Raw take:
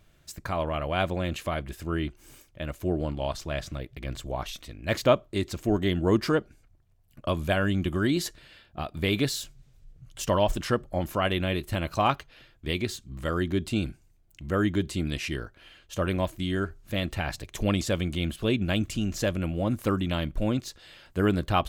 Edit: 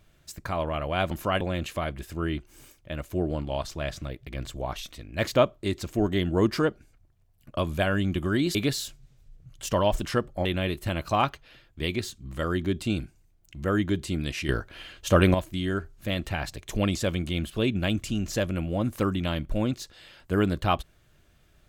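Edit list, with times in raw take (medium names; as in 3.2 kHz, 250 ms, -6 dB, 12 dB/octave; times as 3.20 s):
8.25–9.11 s: delete
11.01–11.31 s: move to 1.11 s
15.35–16.20 s: gain +8.5 dB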